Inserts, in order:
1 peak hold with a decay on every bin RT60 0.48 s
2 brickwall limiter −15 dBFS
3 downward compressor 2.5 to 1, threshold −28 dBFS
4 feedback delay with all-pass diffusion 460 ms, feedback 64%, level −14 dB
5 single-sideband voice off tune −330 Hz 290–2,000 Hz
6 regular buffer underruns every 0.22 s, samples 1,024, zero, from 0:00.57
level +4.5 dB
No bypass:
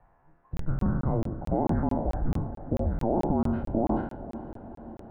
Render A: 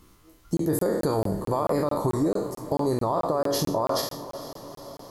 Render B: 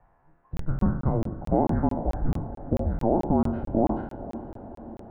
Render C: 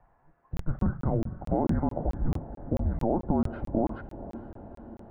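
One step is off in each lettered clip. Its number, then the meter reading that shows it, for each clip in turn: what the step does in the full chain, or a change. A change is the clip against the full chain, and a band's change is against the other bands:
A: 5, 125 Hz band −7.0 dB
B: 2, average gain reduction 3.0 dB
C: 1, change in crest factor +2.0 dB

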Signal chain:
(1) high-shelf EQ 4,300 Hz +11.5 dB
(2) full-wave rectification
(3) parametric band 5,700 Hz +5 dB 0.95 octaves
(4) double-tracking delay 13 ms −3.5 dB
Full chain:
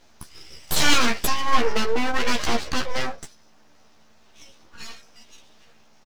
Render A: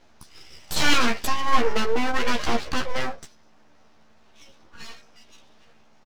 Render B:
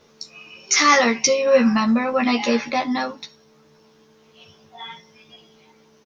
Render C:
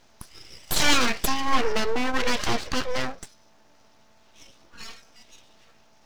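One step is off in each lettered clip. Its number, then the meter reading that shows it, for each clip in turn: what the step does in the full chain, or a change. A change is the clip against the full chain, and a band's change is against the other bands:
1, 8 kHz band −4.5 dB
2, 250 Hz band +6.0 dB
4, change in integrated loudness −1.5 LU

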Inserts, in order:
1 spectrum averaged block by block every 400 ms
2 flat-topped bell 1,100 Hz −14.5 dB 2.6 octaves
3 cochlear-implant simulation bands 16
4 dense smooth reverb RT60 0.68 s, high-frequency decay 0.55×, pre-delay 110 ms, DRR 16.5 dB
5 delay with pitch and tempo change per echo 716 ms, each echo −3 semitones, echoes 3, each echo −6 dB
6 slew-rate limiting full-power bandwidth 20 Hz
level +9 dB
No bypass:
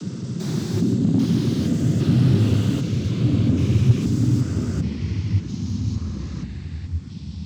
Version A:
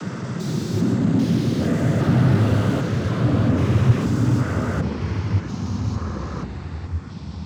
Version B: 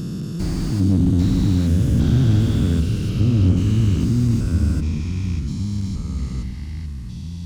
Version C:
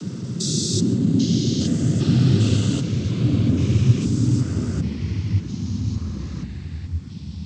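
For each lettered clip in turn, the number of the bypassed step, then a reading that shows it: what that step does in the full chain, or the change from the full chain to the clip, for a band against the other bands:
2, 1 kHz band +11.0 dB
3, 500 Hz band −2.0 dB
6, distortion level −16 dB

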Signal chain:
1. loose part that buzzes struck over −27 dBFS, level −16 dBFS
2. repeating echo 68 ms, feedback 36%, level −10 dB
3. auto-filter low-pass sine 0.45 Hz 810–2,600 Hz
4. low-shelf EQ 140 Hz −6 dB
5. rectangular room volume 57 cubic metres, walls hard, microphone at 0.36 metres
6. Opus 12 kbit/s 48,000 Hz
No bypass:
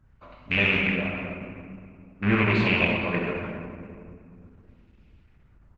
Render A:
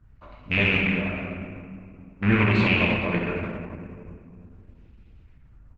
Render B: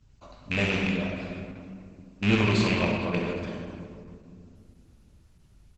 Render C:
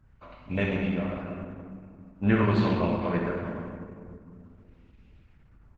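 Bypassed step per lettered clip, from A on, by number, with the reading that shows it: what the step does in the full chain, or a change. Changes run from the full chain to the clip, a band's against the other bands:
4, 125 Hz band +3.0 dB
3, 2 kHz band −5.0 dB
1, 4 kHz band −11.5 dB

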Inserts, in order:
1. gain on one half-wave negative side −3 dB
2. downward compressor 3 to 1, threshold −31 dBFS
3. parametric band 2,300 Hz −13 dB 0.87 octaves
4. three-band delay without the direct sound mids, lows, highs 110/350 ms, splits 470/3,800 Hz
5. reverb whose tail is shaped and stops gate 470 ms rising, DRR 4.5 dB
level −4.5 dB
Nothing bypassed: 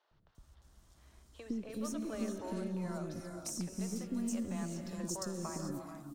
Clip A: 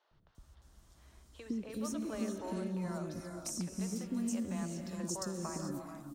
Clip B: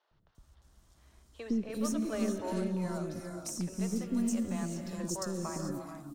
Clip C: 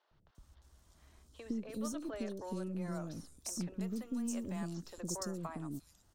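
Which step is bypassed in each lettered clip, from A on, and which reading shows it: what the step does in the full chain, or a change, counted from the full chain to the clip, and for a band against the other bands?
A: 1, distortion level −15 dB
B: 2, change in momentary loudness spread +2 LU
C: 5, echo-to-direct ratio −3.5 dB to −13.0 dB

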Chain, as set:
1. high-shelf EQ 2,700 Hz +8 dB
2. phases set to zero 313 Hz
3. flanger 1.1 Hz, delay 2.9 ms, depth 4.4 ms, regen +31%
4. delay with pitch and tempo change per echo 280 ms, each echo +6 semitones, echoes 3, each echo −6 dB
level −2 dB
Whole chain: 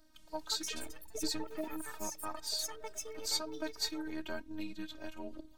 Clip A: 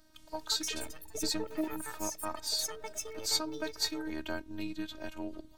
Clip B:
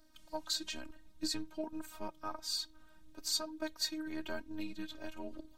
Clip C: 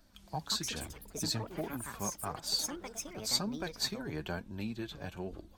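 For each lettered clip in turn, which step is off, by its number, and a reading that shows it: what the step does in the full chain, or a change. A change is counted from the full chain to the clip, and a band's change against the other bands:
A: 3, change in crest factor +2.0 dB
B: 4, 8 kHz band −2.0 dB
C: 2, 125 Hz band +13.5 dB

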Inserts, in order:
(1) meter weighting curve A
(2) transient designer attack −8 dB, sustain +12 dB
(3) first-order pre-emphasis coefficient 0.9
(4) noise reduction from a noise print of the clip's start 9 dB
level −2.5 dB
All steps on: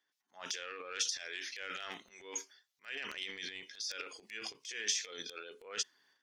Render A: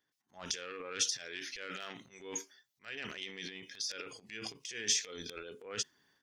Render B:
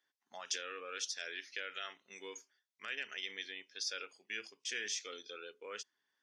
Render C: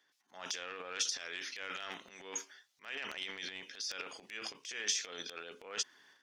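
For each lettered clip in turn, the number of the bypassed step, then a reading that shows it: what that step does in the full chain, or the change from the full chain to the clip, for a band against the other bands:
1, 125 Hz band +10.0 dB
2, 8 kHz band −4.0 dB
4, 125 Hz band +1.5 dB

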